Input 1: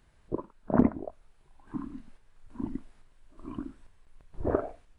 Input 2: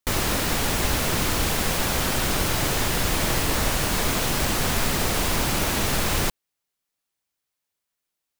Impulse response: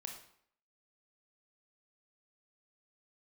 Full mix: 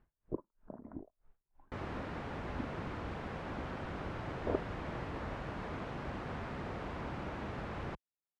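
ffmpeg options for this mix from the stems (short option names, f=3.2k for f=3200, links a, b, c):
-filter_complex "[0:a]aeval=exprs='val(0)*pow(10,-29*(0.5-0.5*cos(2*PI*3.1*n/s))/20)':c=same,volume=-4.5dB[a];[1:a]highpass=51,adelay=1650,volume=-14.5dB[b];[a][b]amix=inputs=2:normalize=0,lowpass=1.6k"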